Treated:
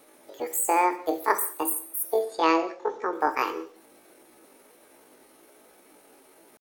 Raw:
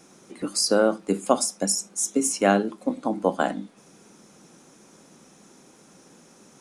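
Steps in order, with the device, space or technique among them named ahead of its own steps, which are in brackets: chipmunk voice (pitch shift +8.5 st); 2.03–3.13 Chebyshev low-pass 6300 Hz, order 3; non-linear reverb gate 0.23 s falling, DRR 9 dB; gain -3 dB

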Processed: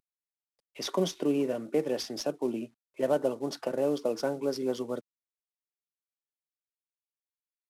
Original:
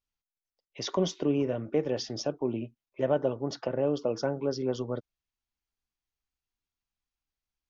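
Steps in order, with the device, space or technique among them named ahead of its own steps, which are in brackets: early wireless headset (HPF 170 Hz 24 dB/oct; CVSD 64 kbps)

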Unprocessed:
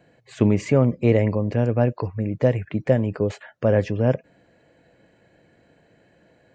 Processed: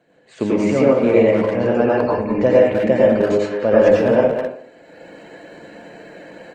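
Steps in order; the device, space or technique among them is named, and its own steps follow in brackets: HPF 230 Hz 12 dB/oct; speakerphone in a meeting room (reverb RT60 0.55 s, pre-delay 86 ms, DRR -5 dB; speakerphone echo 0.2 s, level -6 dB; AGC gain up to 14 dB; gain -1 dB; Opus 20 kbps 48000 Hz)

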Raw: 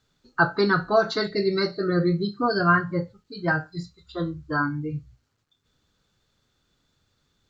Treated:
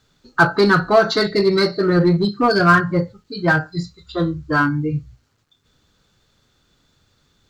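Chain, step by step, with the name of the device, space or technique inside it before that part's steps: parallel distortion (in parallel at -4.5 dB: hard clip -23 dBFS, distortion -7 dB); on the sum: gain +4.5 dB

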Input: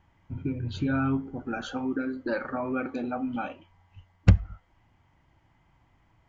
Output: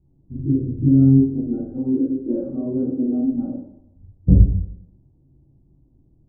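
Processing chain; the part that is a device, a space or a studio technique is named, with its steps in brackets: next room (LPF 400 Hz 24 dB/oct; reverb RT60 0.80 s, pre-delay 8 ms, DRR -10 dB)

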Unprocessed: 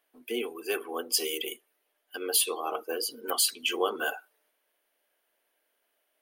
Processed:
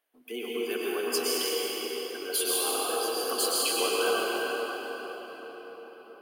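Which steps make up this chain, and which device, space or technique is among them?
cathedral (reverb RT60 5.4 s, pre-delay 0.102 s, DRR -7 dB); gain -5 dB

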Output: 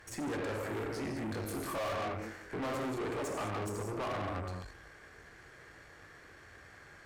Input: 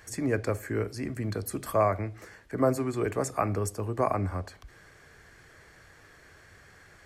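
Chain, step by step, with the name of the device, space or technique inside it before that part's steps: 0.89–2.75 doubler 22 ms -2 dB; non-linear reverb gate 0.24 s flat, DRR 2 dB; tube preamp driven hard (tube stage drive 36 dB, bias 0.65; low shelf 140 Hz -5 dB; high shelf 4300 Hz -7 dB); gain +2.5 dB

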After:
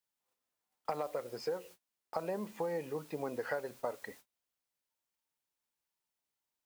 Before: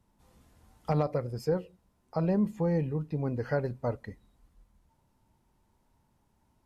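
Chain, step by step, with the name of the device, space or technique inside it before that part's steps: baby monitor (BPF 500–4500 Hz; compressor 8:1, threshold -38 dBFS, peak gain reduction 11.5 dB; white noise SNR 18 dB; gate -59 dBFS, range -30 dB); gain +5 dB

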